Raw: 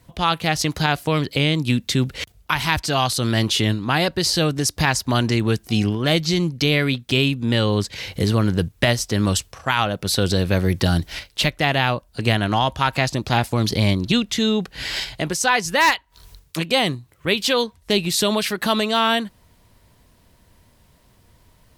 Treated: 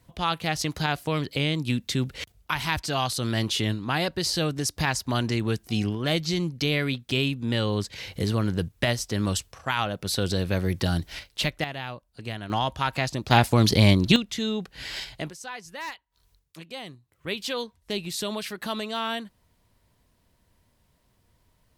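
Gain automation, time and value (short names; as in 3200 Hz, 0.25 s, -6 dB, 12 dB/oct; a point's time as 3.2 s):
-6.5 dB
from 11.64 s -15.5 dB
from 12.5 s -6.5 dB
from 13.31 s +1 dB
from 14.16 s -8.5 dB
from 15.3 s -19.5 dB
from 17.12 s -11 dB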